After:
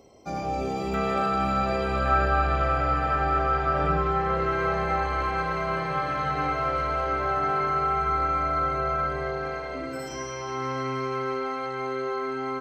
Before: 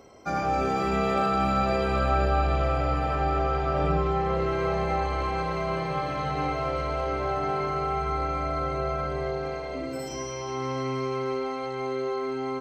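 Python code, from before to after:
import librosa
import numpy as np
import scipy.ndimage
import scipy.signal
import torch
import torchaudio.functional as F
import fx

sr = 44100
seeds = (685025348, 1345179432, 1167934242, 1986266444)

y = fx.peak_eq(x, sr, hz=1500.0, db=fx.steps((0.0, -13.0), (0.94, 2.5), (2.06, 10.0)), octaves=0.73)
y = y * librosa.db_to_amplitude(-1.5)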